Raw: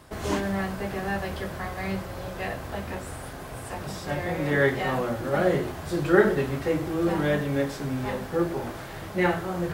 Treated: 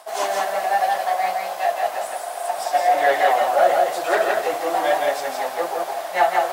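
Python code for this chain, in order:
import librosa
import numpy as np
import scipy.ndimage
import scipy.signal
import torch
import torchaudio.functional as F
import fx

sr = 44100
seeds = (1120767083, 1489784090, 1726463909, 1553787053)

p1 = fx.peak_eq(x, sr, hz=11000.0, db=9.0, octaves=3.0)
p2 = np.sign(p1) * np.maximum(np.abs(p1) - 10.0 ** (-32.5 / 20.0), 0.0)
p3 = p1 + (p2 * 10.0 ** (-5.0 / 20.0))
p4 = fx.stretch_vocoder_free(p3, sr, factor=0.67)
p5 = 10.0 ** (-16.0 / 20.0) * np.tanh(p4 / 10.0 ** (-16.0 / 20.0))
p6 = fx.highpass_res(p5, sr, hz=700.0, q=8.0)
p7 = p6 + fx.echo_single(p6, sr, ms=167, db=-3.0, dry=0)
y = p7 * 10.0 ** (1.5 / 20.0)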